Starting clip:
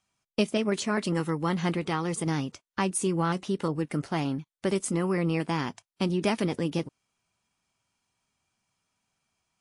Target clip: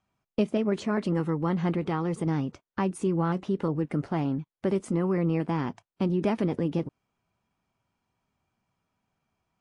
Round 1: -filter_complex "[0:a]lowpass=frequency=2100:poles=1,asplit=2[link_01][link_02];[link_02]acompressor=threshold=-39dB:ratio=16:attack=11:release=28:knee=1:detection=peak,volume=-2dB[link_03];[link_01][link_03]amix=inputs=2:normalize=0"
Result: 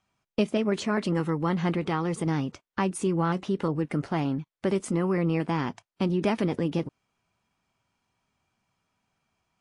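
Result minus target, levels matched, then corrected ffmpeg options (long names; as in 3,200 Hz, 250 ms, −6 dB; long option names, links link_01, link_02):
2,000 Hz band +4.0 dB
-filter_complex "[0:a]lowpass=frequency=910:poles=1,asplit=2[link_01][link_02];[link_02]acompressor=threshold=-39dB:ratio=16:attack=11:release=28:knee=1:detection=peak,volume=-2dB[link_03];[link_01][link_03]amix=inputs=2:normalize=0"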